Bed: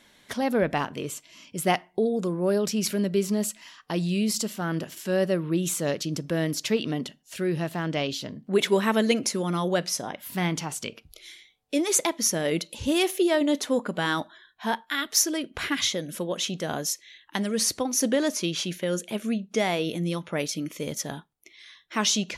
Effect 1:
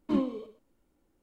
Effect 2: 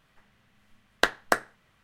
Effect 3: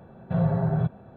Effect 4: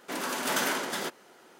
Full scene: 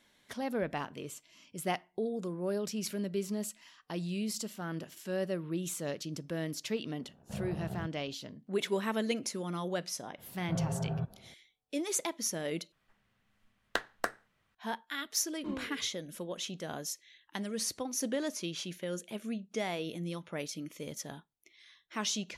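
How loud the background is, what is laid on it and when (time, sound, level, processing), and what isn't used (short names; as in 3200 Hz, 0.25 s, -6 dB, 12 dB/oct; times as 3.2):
bed -10 dB
6.99 add 3 -12.5 dB + ring modulator 32 Hz
10.18 add 3 -10.5 dB
12.72 replace with 2 -10 dB
15.35 add 1 -11 dB
not used: 4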